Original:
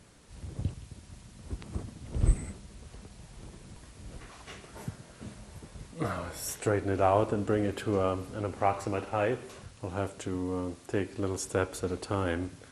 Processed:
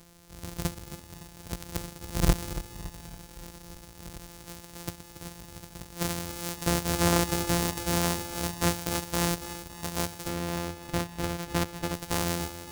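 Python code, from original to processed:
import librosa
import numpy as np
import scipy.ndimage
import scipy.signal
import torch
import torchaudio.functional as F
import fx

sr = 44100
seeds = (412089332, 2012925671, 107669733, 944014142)

y = np.r_[np.sort(x[:len(x) // 256 * 256].reshape(-1, 256), axis=1).ravel(), x[len(x) // 256 * 256:]]
y = fx.bass_treble(y, sr, bass_db=1, treble_db=fx.steps((0.0, 11.0), (10.27, 3.0), (11.93, 9.0)))
y = np.clip(y, -10.0 ** (-11.0 / 20.0), 10.0 ** (-11.0 / 20.0))
y = fx.echo_feedback(y, sr, ms=281, feedback_pct=52, wet_db=-12.5)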